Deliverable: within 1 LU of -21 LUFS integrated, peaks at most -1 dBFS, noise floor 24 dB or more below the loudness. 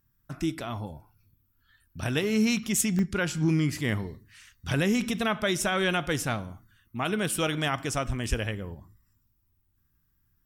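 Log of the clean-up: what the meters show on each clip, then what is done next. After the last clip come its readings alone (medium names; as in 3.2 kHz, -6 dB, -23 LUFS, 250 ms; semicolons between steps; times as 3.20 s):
dropouts 2; longest dropout 1.1 ms; loudness -28.0 LUFS; peak level -13.0 dBFS; loudness target -21.0 LUFS
-> interpolate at 2.99/8.24 s, 1.1 ms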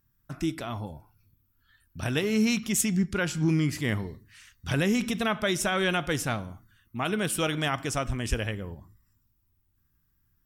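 dropouts 0; loudness -28.0 LUFS; peak level -13.0 dBFS; loudness target -21.0 LUFS
-> trim +7 dB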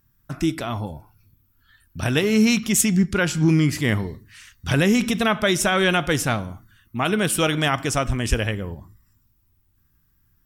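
loudness -21.0 LUFS; peak level -6.0 dBFS; noise floor -64 dBFS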